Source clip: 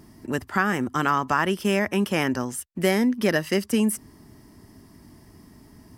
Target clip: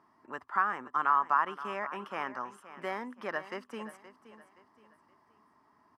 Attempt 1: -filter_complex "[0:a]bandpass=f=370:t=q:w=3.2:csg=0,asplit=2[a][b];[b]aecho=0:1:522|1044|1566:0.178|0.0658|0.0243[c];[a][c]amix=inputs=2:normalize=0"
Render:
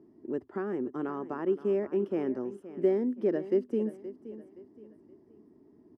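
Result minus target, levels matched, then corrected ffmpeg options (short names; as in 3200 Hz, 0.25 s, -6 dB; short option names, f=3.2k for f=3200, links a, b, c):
1000 Hz band -16.5 dB
-filter_complex "[0:a]bandpass=f=1.1k:t=q:w=3.2:csg=0,asplit=2[a][b];[b]aecho=0:1:522|1044|1566:0.178|0.0658|0.0243[c];[a][c]amix=inputs=2:normalize=0"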